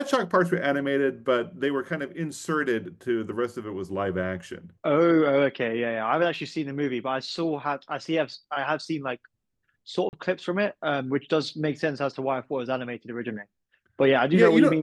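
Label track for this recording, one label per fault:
10.090000	10.130000	dropout 39 ms

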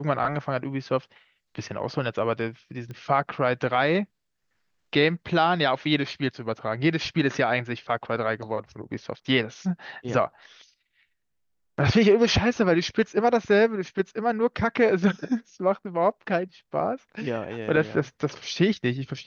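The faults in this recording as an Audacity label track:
2.910000	2.910000	pop -26 dBFS

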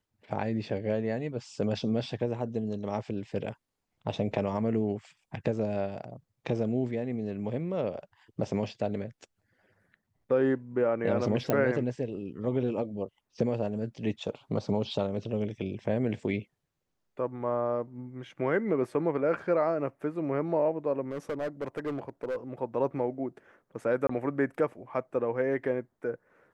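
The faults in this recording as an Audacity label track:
11.500000	11.500000	pop -13 dBFS
21.110000	22.360000	clipped -28.5 dBFS
24.070000	24.090000	dropout 24 ms

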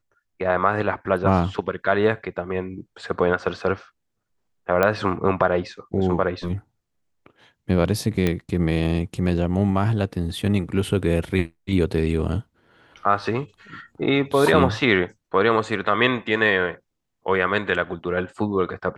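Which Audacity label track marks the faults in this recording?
4.830000	4.830000	pop -7 dBFS
8.270000	8.270000	pop -9 dBFS

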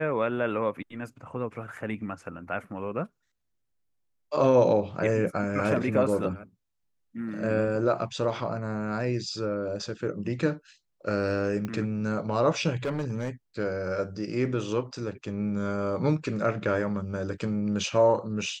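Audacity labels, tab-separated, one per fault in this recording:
11.650000	11.650000	pop -20 dBFS
12.830000	13.300000	clipped -25 dBFS

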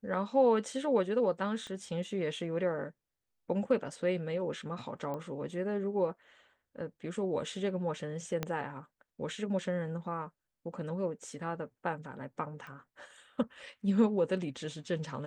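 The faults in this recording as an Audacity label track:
1.670000	1.670000	pop -31 dBFS
5.140000	5.140000	pop -27 dBFS
8.430000	8.430000	pop -18 dBFS
12.670000	12.670000	pop -35 dBFS

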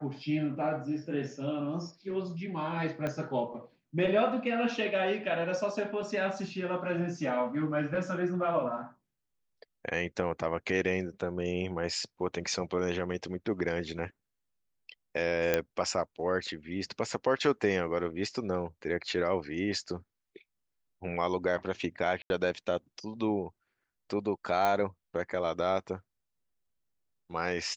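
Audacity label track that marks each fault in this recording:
3.070000	3.070000	pop -20 dBFS
15.540000	15.540000	pop -12 dBFS
22.220000	22.300000	dropout 81 ms
24.650000	24.650000	pop -15 dBFS

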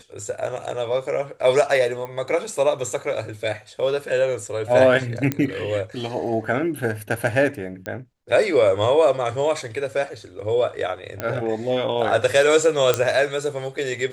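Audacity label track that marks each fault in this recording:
2.050000	2.050000	pop -20 dBFS
5.320000	5.320000	pop -9 dBFS
7.860000	7.860000	pop -16 dBFS
11.200000	11.200000	pop -12 dBFS
12.940000	12.940000	pop -4 dBFS

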